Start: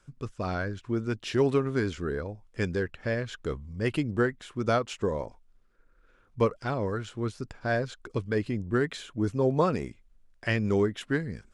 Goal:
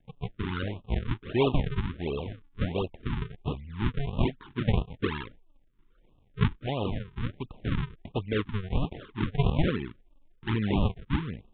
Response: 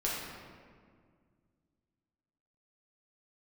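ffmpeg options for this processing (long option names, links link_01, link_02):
-af "bandreject=frequency=2600:width=10,aresample=11025,acrusher=samples=22:mix=1:aa=0.000001:lfo=1:lforange=35.2:lforate=1.3,aresample=44100,asoftclip=type=hard:threshold=-14.5dB,aresample=8000,aresample=44100,afftfilt=real='re*(1-between(b*sr/1024,570*pow(1800/570,0.5+0.5*sin(2*PI*1.5*pts/sr))/1.41,570*pow(1800/570,0.5+0.5*sin(2*PI*1.5*pts/sr))*1.41))':imag='im*(1-between(b*sr/1024,570*pow(1800/570,0.5+0.5*sin(2*PI*1.5*pts/sr))/1.41,570*pow(1800/570,0.5+0.5*sin(2*PI*1.5*pts/sr))*1.41))':win_size=1024:overlap=0.75"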